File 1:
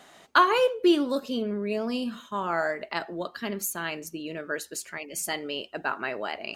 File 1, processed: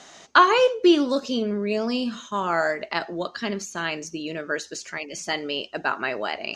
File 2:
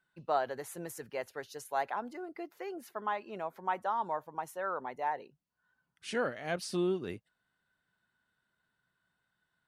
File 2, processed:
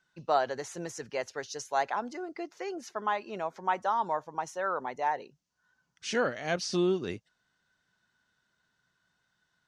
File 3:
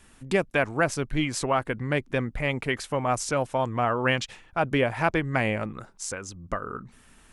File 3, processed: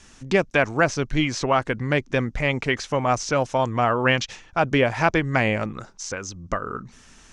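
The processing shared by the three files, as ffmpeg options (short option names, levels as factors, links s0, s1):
-filter_complex "[0:a]acrossover=split=4000[s0][s1];[s1]acompressor=threshold=0.00501:ratio=4:attack=1:release=60[s2];[s0][s2]amix=inputs=2:normalize=0,lowpass=f=6100:t=q:w=3.5,volume=1.58"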